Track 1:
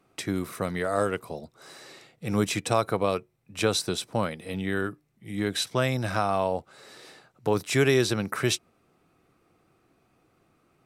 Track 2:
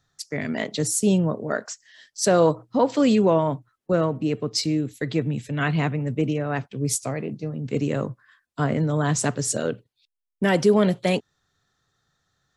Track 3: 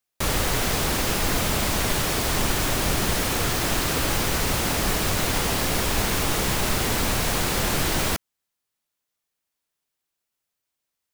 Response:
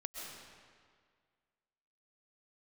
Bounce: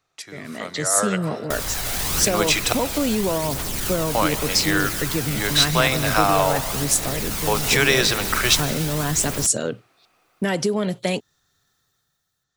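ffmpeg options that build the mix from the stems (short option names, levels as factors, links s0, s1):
-filter_complex "[0:a]acrossover=split=550 6700:gain=0.178 1 0.178[s0][s1][s2];[s0][s1][s2]amix=inputs=3:normalize=0,dynaudnorm=f=280:g=9:m=1.78,volume=0.398,asplit=3[s3][s4][s5];[s3]atrim=end=2.73,asetpts=PTS-STARTPTS,afade=t=out:st=2.726:d=0.004:c=hsin[s6];[s4]atrim=start=2.73:end=4.09,asetpts=PTS-STARTPTS,volume=0[s7];[s5]atrim=start=4.09,asetpts=PTS-STARTPTS,afade=t=in:d=0.004:c=hsin[s8];[s6][s7][s8]concat=n=3:v=0:a=1,asplit=2[s9][s10];[s10]volume=0.398[s11];[1:a]acompressor=threshold=0.1:ratio=6,volume=0.335,asplit=2[s12][s13];[2:a]alimiter=limit=0.126:level=0:latency=1:release=52,aphaser=in_gain=1:out_gain=1:delay=1.5:decay=0.4:speed=0.87:type=triangular,adelay=1300,volume=0.501[s14];[s13]apad=whole_len=548398[s15];[s14][s15]sidechaincompress=threshold=0.01:ratio=8:attack=45:release=1490[s16];[3:a]atrim=start_sample=2205[s17];[s11][s17]afir=irnorm=-1:irlink=0[s18];[s9][s12][s16][s18]amix=inputs=4:normalize=0,highshelf=f=4400:g=9,dynaudnorm=f=120:g=13:m=3.55"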